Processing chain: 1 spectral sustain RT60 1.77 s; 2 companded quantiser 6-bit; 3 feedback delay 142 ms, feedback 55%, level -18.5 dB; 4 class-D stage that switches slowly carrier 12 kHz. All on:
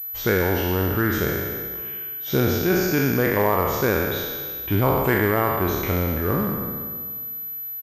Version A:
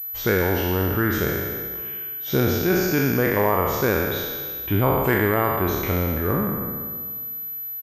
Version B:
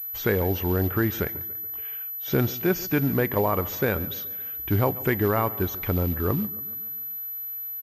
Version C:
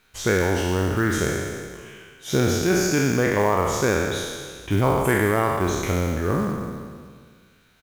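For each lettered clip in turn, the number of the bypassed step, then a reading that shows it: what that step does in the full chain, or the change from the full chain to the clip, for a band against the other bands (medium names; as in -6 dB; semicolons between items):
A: 2, distortion -26 dB; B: 1, 125 Hz band +4.0 dB; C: 4, 8 kHz band +7.5 dB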